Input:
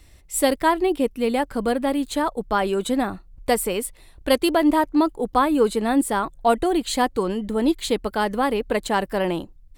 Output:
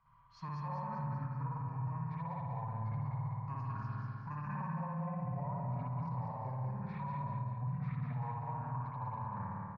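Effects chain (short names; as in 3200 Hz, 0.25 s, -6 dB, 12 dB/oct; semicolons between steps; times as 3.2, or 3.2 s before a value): double band-pass 620 Hz, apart 3 oct; pitch shift -10 st; air absorption 86 m; spring tank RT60 1.1 s, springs 55 ms, chirp 25 ms, DRR -7.5 dB; limiter -31.5 dBFS, peak gain reduction 19 dB; on a send: feedback echo 0.194 s, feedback 53%, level -4 dB; on the sum: gain -3 dB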